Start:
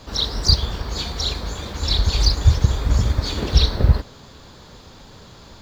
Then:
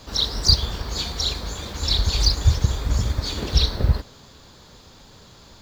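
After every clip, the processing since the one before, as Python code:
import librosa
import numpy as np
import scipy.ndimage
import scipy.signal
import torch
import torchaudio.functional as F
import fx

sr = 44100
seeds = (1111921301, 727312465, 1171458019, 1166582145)

y = fx.high_shelf(x, sr, hz=4100.0, db=6.0)
y = fx.rider(y, sr, range_db=3, speed_s=2.0)
y = y * 10.0 ** (-3.5 / 20.0)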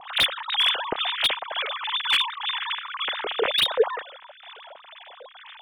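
y = fx.sine_speech(x, sr)
y = fx.harmonic_tremolo(y, sr, hz=2.1, depth_pct=70, crossover_hz=1100.0)
y = fx.slew_limit(y, sr, full_power_hz=480.0)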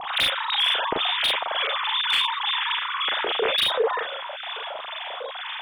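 y = fx.room_early_taps(x, sr, ms=(36, 47), db=(-4.0, -7.0))
y = fx.env_flatten(y, sr, amount_pct=50)
y = y * 10.0 ** (-4.5 / 20.0)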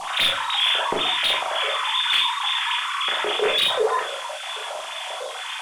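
y = fx.dmg_noise_band(x, sr, seeds[0], low_hz=2400.0, high_hz=10000.0, level_db=-45.0)
y = fx.room_shoebox(y, sr, seeds[1], volume_m3=210.0, walls='furnished', distance_m=1.1)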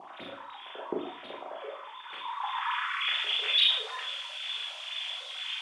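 y = fx.filter_sweep_bandpass(x, sr, from_hz=310.0, to_hz=3200.0, start_s=1.96, end_s=3.23, q=2.1)
y = y + 10.0 ** (-12.0 / 20.0) * np.pad(y, (int(108 * sr / 1000.0), 0))[:len(y)]
y = y * 10.0 ** (-1.5 / 20.0)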